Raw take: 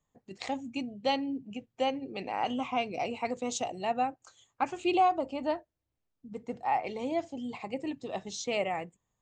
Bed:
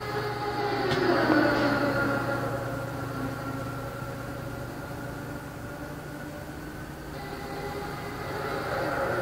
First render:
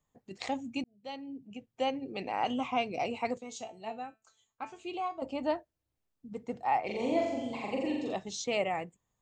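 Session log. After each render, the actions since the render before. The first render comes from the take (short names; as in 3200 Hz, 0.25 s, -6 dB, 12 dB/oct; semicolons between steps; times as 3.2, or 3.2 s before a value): 0.84–2.07 fade in; 3.38–5.22 resonator 220 Hz, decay 0.24 s, mix 80%; 6.85–8.14 flutter echo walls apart 7.4 m, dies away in 1 s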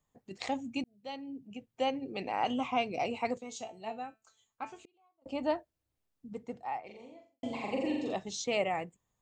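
4.79–5.26 flipped gate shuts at -41 dBFS, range -35 dB; 6.28–7.43 fade out quadratic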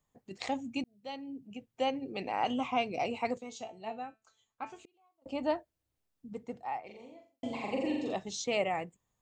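3.49–4.7 air absorption 58 m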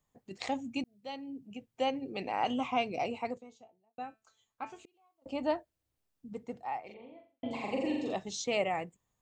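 2.87–3.98 studio fade out; 6.94–7.51 steep low-pass 3500 Hz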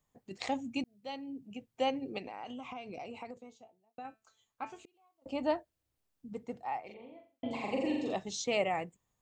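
2.18–4.05 compressor 8:1, threshold -40 dBFS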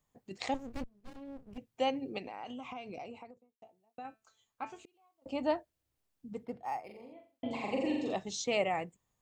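0.54–1.58 running maximum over 65 samples; 2.92–3.62 studio fade out; 6.45–7.13 decimation joined by straight lines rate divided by 6×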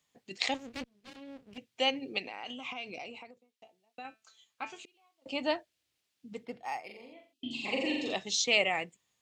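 weighting filter D; 7.33–7.66 spectral gain 400–2500 Hz -23 dB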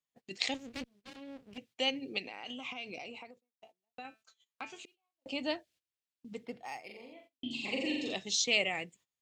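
gate -59 dBFS, range -18 dB; dynamic EQ 1000 Hz, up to -8 dB, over -46 dBFS, Q 0.72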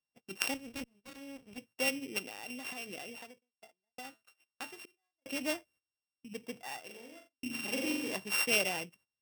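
sample sorter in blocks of 16 samples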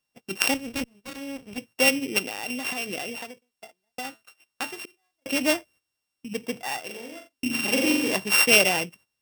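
gain +12 dB; limiter -1 dBFS, peak gain reduction 3 dB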